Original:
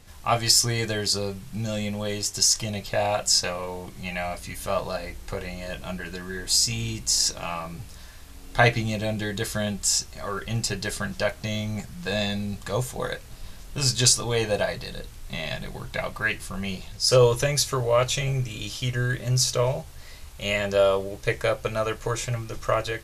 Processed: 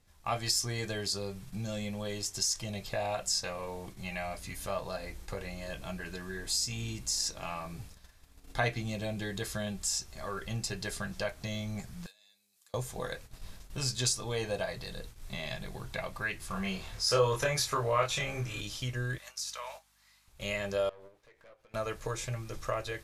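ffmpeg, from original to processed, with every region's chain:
-filter_complex "[0:a]asettb=1/sr,asplit=3[s0][s1][s2];[s0]atrim=end=12.064[s3];[s1]atrim=start=12.06:end=12.74,asetpts=PTS-STARTPTS,afade=t=in:d=0.004:c=qsin,afade=t=out:st=0.676:d=0.004:c=qsin,highpass=110,acompressor=threshold=0.02:ratio=5:attack=3.2:release=140:knee=1:detection=peak,aderivative[s4];[s2]atrim=start=12.736[s5];[s3][s4]acrossfade=d=0.004:c1=hsin:c2=qsin[s6];[s6][s5]acrossfade=d=0.004:c1=qsin:c2=hsin,asettb=1/sr,asplit=3[s7][s8][s9];[s7]atrim=end=16.484[s10];[s8]atrim=start=16.48:end=18.61,asetpts=PTS-STARTPTS,afade=t=in:d=0.004:c=qsin,afade=t=out:st=2.126:d=0.004:c=qsin,equalizer=f=1300:t=o:w=2:g=8,asplit=2[s11][s12];[s12]adelay=26,volume=0.794[s13];[s11][s13]amix=inputs=2:normalize=0,atrim=end_sample=93933[s14];[s9]atrim=start=18.606[s15];[s10][s14]acrossfade=d=0.004:c1=hsin:c2=qsin[s16];[s16][s15]acrossfade=d=0.004:c1=qsin:c2=hsin,asettb=1/sr,asplit=3[s17][s18][s19];[s17]atrim=end=19.184[s20];[s18]atrim=start=19.18:end=20.28,asetpts=PTS-STARTPTS,afade=t=in:d=0.004:c=qsin,afade=t=out:st=1.096:d=0.004:c=qsin,highpass=f=870:w=0.5412,highpass=f=870:w=1.3066,acompressor=threshold=0.0251:ratio=2:attack=3.2:release=140:knee=1:detection=peak,aeval=exprs='val(0)+0.00112*(sin(2*PI*50*n/s)+sin(2*PI*2*50*n/s)/2+sin(2*PI*3*50*n/s)/3+sin(2*PI*4*50*n/s)/4+sin(2*PI*5*50*n/s)/5)':c=same[s21];[s19]atrim=start=20.276[s22];[s20][s21]acrossfade=d=0.004:c1=hsin:c2=qsin[s23];[s23][s22]acrossfade=d=0.004:c1=qsin:c2=hsin,asettb=1/sr,asplit=3[s24][s25][s26];[s24]atrim=end=20.894[s27];[s25]atrim=start=20.89:end=21.74,asetpts=PTS-STARTPTS,afade=t=in:d=0.004:c=qsin,afade=t=out:st=0.846:d=0.004:c=qsin,bass=f=250:g=-15,treble=f=4000:g=-11,acompressor=threshold=0.0178:ratio=6:attack=3.2:release=140:knee=1:detection=peak,aeval=exprs='(tanh(79.4*val(0)+0.55)-tanh(0.55))/79.4':c=same[s28];[s26]atrim=start=21.736[s29];[s27][s28]acrossfade=d=0.004:c1=hsin:c2=qsin[s30];[s30][s29]acrossfade=d=0.004:c1=qsin:c2=hsin,agate=range=0.282:threshold=0.01:ratio=16:detection=peak,bandreject=f=2900:w=24,acompressor=threshold=0.0282:ratio=1.5,volume=0.531"

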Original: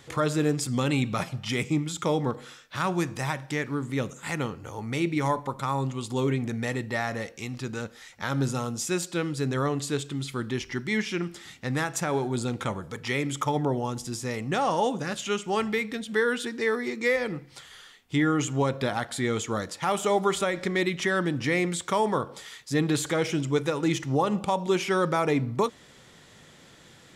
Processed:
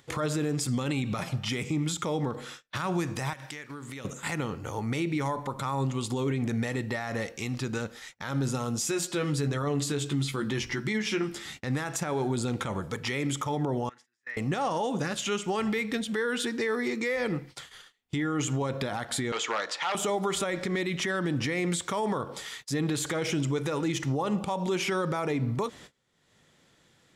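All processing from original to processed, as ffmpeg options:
-filter_complex "[0:a]asettb=1/sr,asplit=3[s0][s1][s2];[s0]atrim=end=3.334[s3];[s1]atrim=start=3.33:end=4.05,asetpts=PTS-STARTPTS,afade=t=in:d=0.004:c=qsin,afade=t=out:st=0.716:d=0.004:c=qsin,tiltshelf=f=890:g=-5.5,acompressor=threshold=0.01:ratio=8:attack=3.2:release=140:knee=1:detection=peak[s4];[s2]atrim=start=4.046[s5];[s3][s4]acrossfade=d=0.004:c1=hsin:c2=qsin[s6];[s6][s5]acrossfade=d=0.004:c1=qsin:c2=hsin,asettb=1/sr,asplit=3[s7][s8][s9];[s7]atrim=end=8.804[s10];[s8]atrim=start=8.8:end=11.59,asetpts=PTS-STARTPTS,afade=t=in:d=0.004:c=qsin,afade=t=out:st=2.786:d=0.004:c=qsin,bandreject=f=60:t=h:w=6,bandreject=f=120:t=h:w=6,bandreject=f=180:t=h:w=6,bandreject=f=240:t=h:w=6,bandreject=f=300:t=h:w=6,asplit=2[s11][s12];[s12]adelay=14,volume=0.501[s13];[s11][s13]amix=inputs=2:normalize=0,atrim=end_sample=123039[s14];[s9]atrim=start=11.586[s15];[s10][s14]acrossfade=d=0.004:c1=hsin:c2=qsin[s16];[s16][s15]acrossfade=d=0.004:c1=qsin:c2=hsin,asettb=1/sr,asplit=3[s17][s18][s19];[s17]atrim=end=13.894[s20];[s18]atrim=start=13.89:end=14.37,asetpts=PTS-STARTPTS,afade=t=in:d=0.004:c=qsin,afade=t=out:st=0.476:d=0.004:c=qsin,bandpass=f=1800:t=q:w=5.7,asoftclip=type=hard:threshold=0.0224[s21];[s19]atrim=start=14.366[s22];[s20][s21]acrossfade=d=0.004:c1=hsin:c2=qsin[s23];[s23][s22]acrossfade=d=0.004:c1=qsin:c2=hsin,asettb=1/sr,asplit=3[s24][s25][s26];[s24]atrim=end=19.324[s27];[s25]atrim=start=19.32:end=19.95,asetpts=PTS-STARTPTS,afade=t=in:d=0.004:c=qsin,afade=t=out:st=0.626:d=0.004:c=qsin,acontrast=56,aeval=exprs='0.168*(abs(mod(val(0)/0.168+3,4)-2)-1)':c=same,highpass=710,lowpass=4400[s28];[s26]atrim=start=19.946[s29];[s27][s28]acrossfade=d=0.004:c1=hsin:c2=qsin[s30];[s30][s29]acrossfade=d=0.004:c1=qsin:c2=hsin,agate=range=0.0447:threshold=0.00447:ratio=16:detection=peak,alimiter=limit=0.0631:level=0:latency=1:release=82,acompressor=mode=upward:threshold=0.002:ratio=2.5,volume=1.5"

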